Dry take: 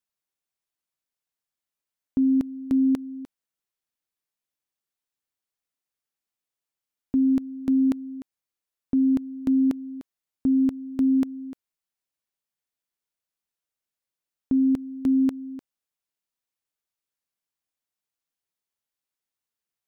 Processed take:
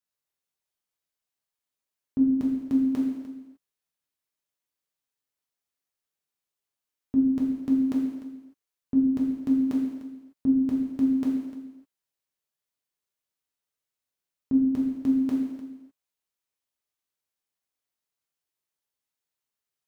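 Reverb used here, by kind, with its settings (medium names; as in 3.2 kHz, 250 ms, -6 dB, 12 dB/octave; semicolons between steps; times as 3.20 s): gated-style reverb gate 330 ms falling, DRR -4 dB; trim -5 dB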